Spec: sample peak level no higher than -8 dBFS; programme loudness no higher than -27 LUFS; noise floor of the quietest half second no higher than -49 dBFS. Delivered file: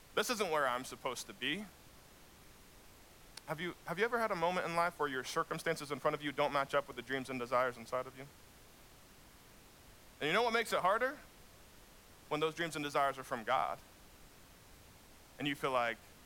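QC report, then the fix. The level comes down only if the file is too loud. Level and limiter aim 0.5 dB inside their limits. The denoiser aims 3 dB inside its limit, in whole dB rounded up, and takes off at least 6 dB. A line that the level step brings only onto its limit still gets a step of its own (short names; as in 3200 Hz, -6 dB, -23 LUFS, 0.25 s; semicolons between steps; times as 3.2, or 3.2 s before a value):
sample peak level -20.0 dBFS: OK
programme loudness -36.5 LUFS: OK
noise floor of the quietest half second -60 dBFS: OK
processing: none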